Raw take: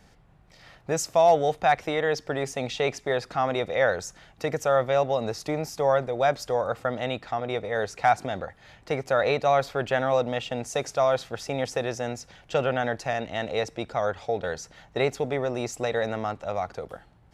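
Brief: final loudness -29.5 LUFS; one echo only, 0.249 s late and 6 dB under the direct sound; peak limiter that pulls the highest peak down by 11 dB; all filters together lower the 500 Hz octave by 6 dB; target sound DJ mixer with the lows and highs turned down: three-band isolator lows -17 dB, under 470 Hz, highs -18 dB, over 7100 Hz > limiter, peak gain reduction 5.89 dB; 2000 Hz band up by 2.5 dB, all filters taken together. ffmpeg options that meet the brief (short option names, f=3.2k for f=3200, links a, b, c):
-filter_complex "[0:a]equalizer=f=500:t=o:g=-4,equalizer=f=2k:t=o:g=3.5,alimiter=limit=-20dB:level=0:latency=1,acrossover=split=470 7100:gain=0.141 1 0.126[a][b][c];[a][b][c]amix=inputs=3:normalize=0,aecho=1:1:249:0.501,volume=5dB,alimiter=limit=-18dB:level=0:latency=1"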